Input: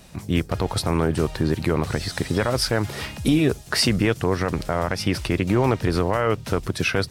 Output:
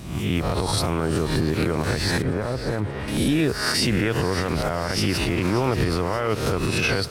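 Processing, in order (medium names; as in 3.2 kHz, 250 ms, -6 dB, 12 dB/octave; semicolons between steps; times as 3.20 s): reverse spectral sustain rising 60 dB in 0.67 s; peak limiter -14.5 dBFS, peak gain reduction 10.5 dB; 2.22–3.08 s: tape spacing loss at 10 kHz 43 dB; on a send: thinning echo 581 ms, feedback 59%, level -13.5 dB; on the sum: trim +2 dB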